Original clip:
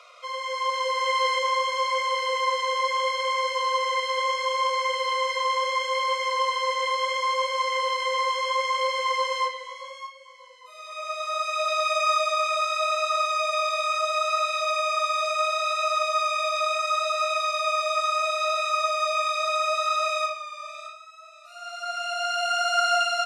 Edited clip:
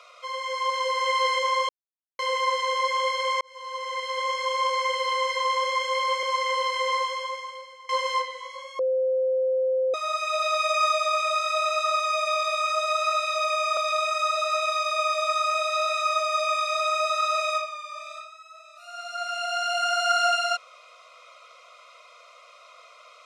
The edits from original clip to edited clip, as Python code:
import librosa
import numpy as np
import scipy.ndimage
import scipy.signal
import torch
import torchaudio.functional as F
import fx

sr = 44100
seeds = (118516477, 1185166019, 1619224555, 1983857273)

y = fx.edit(x, sr, fx.silence(start_s=1.69, length_s=0.5),
    fx.fade_in_span(start_s=3.41, length_s=1.49, curve='qsin'),
    fx.cut(start_s=6.23, length_s=1.26),
    fx.fade_out_to(start_s=8.21, length_s=0.94, curve='qua', floor_db=-22.5),
    fx.bleep(start_s=10.05, length_s=1.15, hz=520.0, db=-20.5),
    fx.cut(start_s=15.03, length_s=1.42), tone=tone)